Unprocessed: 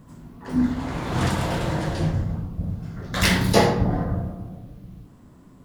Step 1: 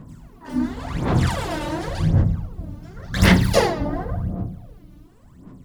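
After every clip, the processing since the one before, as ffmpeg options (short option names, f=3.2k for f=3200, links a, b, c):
-af "aphaser=in_gain=1:out_gain=1:delay=3.4:decay=0.72:speed=0.91:type=sinusoidal,volume=-3dB"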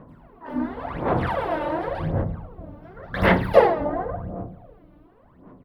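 -af "firequalizer=gain_entry='entry(120,0);entry(510,14);entry(3700,-2);entry(6700,-22);entry(11000,-7)':delay=0.05:min_phase=1,volume=-9dB"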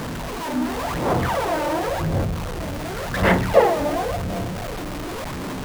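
-af "aeval=exprs='val(0)+0.5*0.0708*sgn(val(0))':c=same,volume=-1dB"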